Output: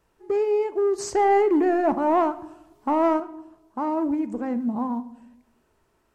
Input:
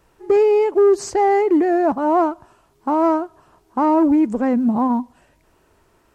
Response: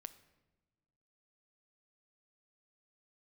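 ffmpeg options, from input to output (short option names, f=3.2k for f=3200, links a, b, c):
-filter_complex "[0:a]asettb=1/sr,asplit=3[a][b][c];[a]atrim=end=0.984[d];[b]atrim=start=0.98:end=3.2,asetpts=PTS-STARTPTS,afade=t=in:d=0.004:c=qsin,afade=t=out:st=2.216:d=0.004:c=qsin,acontrast=73[e];[c]atrim=start=3.196[f];[d][e]acrossfade=d=0.004:c1=hsin:c2=qsin[g];[g][f]acrossfade=d=0.004:c1=qsin:c2=hsin[h];[1:a]atrim=start_sample=2205,asetrate=66150,aresample=44100[i];[h][i]afir=irnorm=-1:irlink=0"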